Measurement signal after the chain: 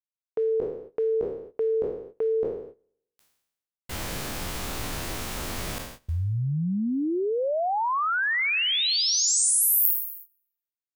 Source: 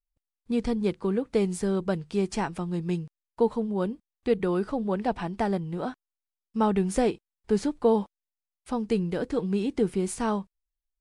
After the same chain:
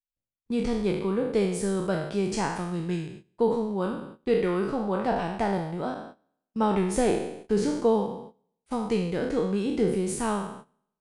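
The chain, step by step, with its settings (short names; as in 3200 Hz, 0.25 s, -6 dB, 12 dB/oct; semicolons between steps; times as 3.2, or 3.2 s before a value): spectral trails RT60 0.84 s; gate -41 dBFS, range -17 dB; gain -1.5 dB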